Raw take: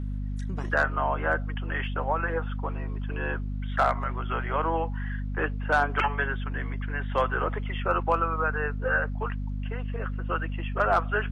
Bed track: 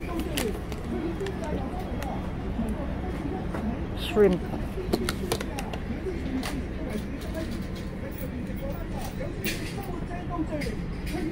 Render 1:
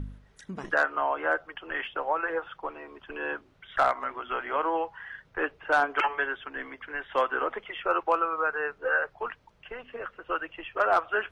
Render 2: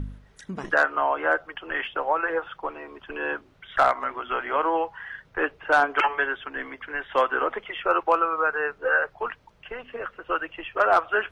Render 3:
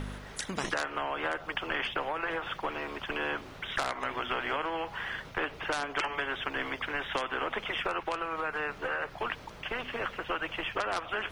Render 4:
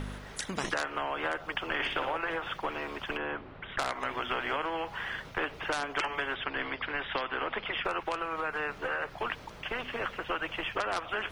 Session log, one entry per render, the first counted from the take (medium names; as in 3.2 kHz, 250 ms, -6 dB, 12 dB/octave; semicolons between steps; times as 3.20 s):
de-hum 50 Hz, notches 5
trim +4 dB
compression 10:1, threshold -26 dBFS, peak gain reduction 12.5 dB; spectrum-flattening compressor 2:1
1.74–2.17 s: flutter echo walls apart 10.1 m, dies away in 0.57 s; 3.17–3.79 s: distance through air 420 m; 6.34–7.85 s: elliptic low-pass 4.9 kHz